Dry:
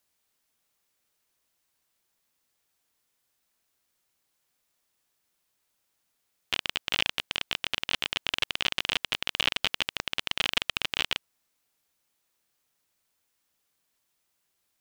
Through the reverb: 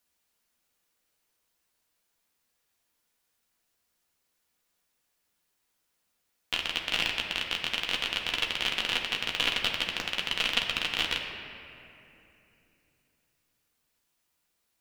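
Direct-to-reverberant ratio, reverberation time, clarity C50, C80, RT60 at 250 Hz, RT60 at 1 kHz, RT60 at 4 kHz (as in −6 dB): 0.0 dB, 2.9 s, 4.0 dB, 5.5 dB, 3.8 s, 2.6 s, 1.7 s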